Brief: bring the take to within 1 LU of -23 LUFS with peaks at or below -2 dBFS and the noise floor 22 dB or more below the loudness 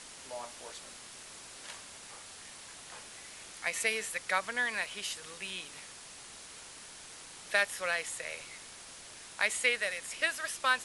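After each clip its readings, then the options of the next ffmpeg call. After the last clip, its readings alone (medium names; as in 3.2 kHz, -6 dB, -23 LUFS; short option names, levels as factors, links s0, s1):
noise floor -50 dBFS; noise floor target -56 dBFS; loudness -33.5 LUFS; peak level -13.0 dBFS; loudness target -23.0 LUFS
-> -af "afftdn=nr=6:nf=-50"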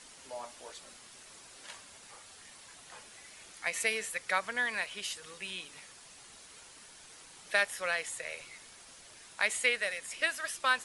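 noise floor -54 dBFS; noise floor target -55 dBFS
-> -af "afftdn=nr=6:nf=-54"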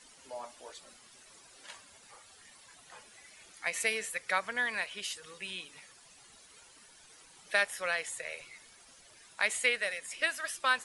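noise floor -58 dBFS; loudness -33.0 LUFS; peak level -13.0 dBFS; loudness target -23.0 LUFS
-> -af "volume=3.16"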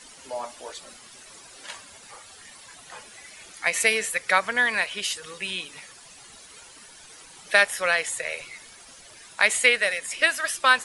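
loudness -23.0 LUFS; peak level -3.0 dBFS; noise floor -48 dBFS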